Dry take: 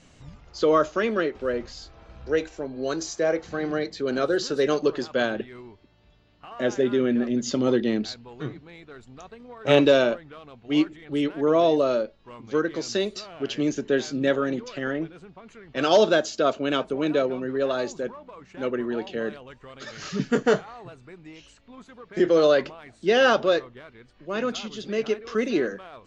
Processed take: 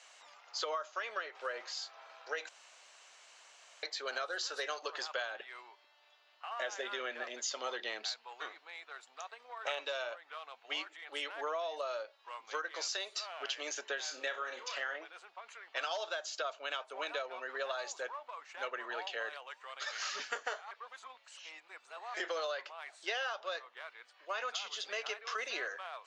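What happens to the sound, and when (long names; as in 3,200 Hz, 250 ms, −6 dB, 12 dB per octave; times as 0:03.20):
0:02.49–0:03.83: fill with room tone
0:14.04–0:14.96: flutter between parallel walls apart 5.4 metres, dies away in 0.23 s
0:20.71–0:22.14: reverse
whole clip: high-pass filter 720 Hz 24 dB per octave; downward compressor 20 to 1, threshold −35 dBFS; level +1 dB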